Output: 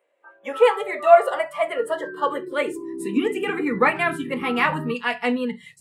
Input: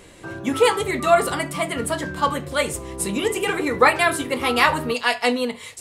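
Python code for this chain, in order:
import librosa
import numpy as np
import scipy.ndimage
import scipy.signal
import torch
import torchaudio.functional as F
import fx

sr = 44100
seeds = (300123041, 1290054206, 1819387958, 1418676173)

y = fx.high_shelf_res(x, sr, hz=3400.0, db=-10.0, q=1.5)
y = fx.filter_sweep_highpass(y, sr, from_hz=570.0, to_hz=180.0, start_s=1.51, end_s=4.02, q=4.4)
y = fx.noise_reduce_blind(y, sr, reduce_db=22)
y = y * librosa.db_to_amplitude(-5.0)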